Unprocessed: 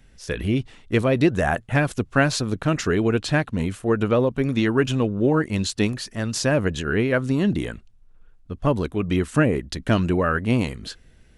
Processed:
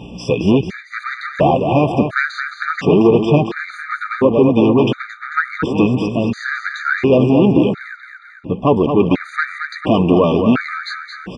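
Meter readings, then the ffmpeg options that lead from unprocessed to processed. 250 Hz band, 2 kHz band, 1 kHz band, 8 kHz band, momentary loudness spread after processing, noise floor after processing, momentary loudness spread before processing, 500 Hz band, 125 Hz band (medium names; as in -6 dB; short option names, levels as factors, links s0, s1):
+7.0 dB, +5.5 dB, +8.5 dB, under -10 dB, 14 LU, -38 dBFS, 7 LU, +7.5 dB, +3.5 dB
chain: -af "deesser=0.75,agate=range=0.0224:threshold=0.00447:ratio=3:detection=peak,acompressor=mode=upward:threshold=0.0631:ratio=2.5,aeval=exprs='val(0)+0.01*(sin(2*PI*60*n/s)+sin(2*PI*2*60*n/s)/2+sin(2*PI*3*60*n/s)/3+sin(2*PI*4*60*n/s)/4+sin(2*PI*5*60*n/s)/5)':c=same,asoftclip=type=tanh:threshold=0.1,flanger=delay=2.2:depth=5.6:regen=55:speed=1.6:shape=sinusoidal,highpass=160,lowpass=2700,aecho=1:1:222|444|666|888|1110|1332|1554:0.422|0.24|0.137|0.0781|0.0445|0.0254|0.0145,alimiter=level_in=8.91:limit=0.891:release=50:level=0:latency=1,afftfilt=real='re*gt(sin(2*PI*0.71*pts/sr)*(1-2*mod(floor(b*sr/1024/1200),2)),0)':imag='im*gt(sin(2*PI*0.71*pts/sr)*(1-2*mod(floor(b*sr/1024/1200),2)),0)':win_size=1024:overlap=0.75"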